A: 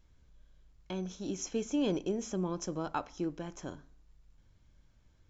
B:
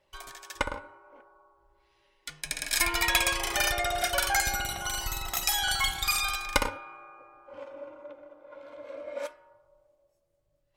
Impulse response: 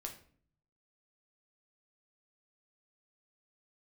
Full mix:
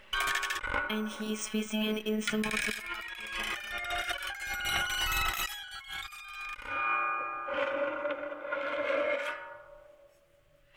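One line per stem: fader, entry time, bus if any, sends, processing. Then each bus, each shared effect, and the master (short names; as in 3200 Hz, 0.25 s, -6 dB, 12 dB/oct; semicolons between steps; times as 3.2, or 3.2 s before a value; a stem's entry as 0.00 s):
-3.0 dB, 0.00 s, no send, notch 440 Hz, Q 12; robotiser 215 Hz; sample-and-hold 3×
+2.5 dB, 0.00 s, no send, notches 50/100 Hz; auto duck -8 dB, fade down 1.70 s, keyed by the first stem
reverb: off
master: band shelf 2000 Hz +11 dB; negative-ratio compressor -36 dBFS, ratio -1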